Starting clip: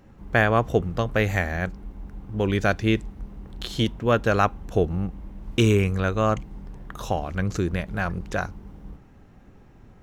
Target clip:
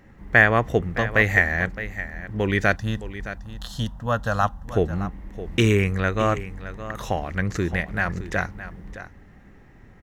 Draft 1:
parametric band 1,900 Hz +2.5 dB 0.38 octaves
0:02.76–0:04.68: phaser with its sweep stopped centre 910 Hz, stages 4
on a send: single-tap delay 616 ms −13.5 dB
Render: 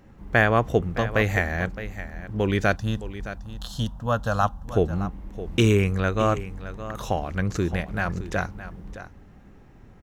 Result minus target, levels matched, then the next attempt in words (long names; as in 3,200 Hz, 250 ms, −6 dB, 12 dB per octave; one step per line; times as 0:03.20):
2,000 Hz band −4.0 dB
parametric band 1,900 Hz +12.5 dB 0.38 octaves
0:02.76–0:04.68: phaser with its sweep stopped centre 910 Hz, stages 4
on a send: single-tap delay 616 ms −13.5 dB